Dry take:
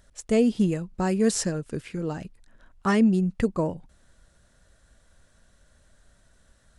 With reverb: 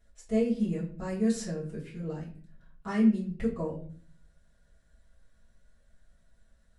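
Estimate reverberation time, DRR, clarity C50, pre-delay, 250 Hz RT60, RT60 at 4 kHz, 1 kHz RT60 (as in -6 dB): 0.45 s, -9.0 dB, 8.5 dB, 4 ms, 0.70 s, 0.35 s, 0.40 s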